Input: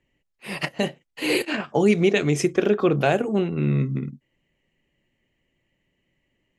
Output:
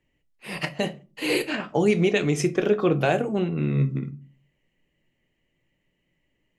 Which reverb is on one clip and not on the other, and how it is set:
rectangular room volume 170 cubic metres, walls furnished, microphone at 0.49 metres
level −2 dB

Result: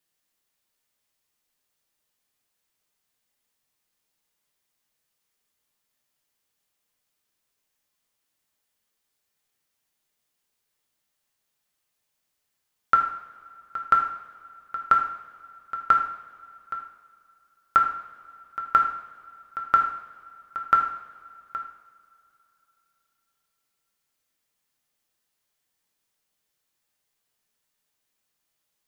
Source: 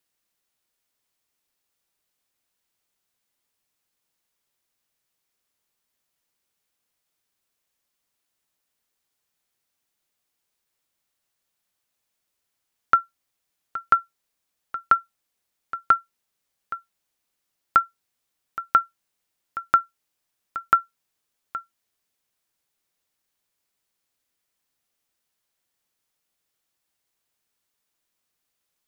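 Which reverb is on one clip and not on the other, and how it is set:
coupled-rooms reverb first 0.68 s, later 3.3 s, from −20 dB, DRR 1 dB
level −2 dB

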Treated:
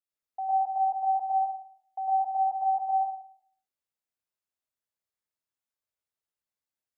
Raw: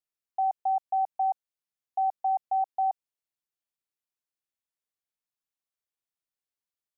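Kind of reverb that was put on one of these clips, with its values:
dense smooth reverb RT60 0.58 s, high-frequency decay 0.45×, pre-delay 90 ms, DRR −6 dB
level −7 dB

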